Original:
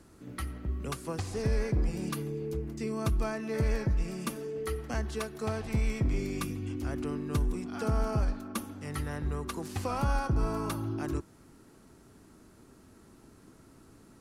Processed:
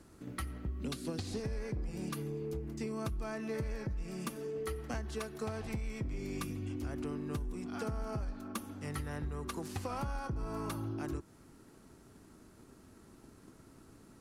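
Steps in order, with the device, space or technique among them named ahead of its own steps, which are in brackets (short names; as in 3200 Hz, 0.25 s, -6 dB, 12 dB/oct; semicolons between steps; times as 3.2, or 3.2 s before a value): 0.81–1.4 fifteen-band EQ 250 Hz +10 dB, 1000 Hz -7 dB, 4000 Hz +10 dB; drum-bus smash (transient shaper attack +4 dB, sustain 0 dB; compressor, threshold -31 dBFS, peak gain reduction 10 dB; soft clip -26 dBFS, distortion -21 dB); gain -2 dB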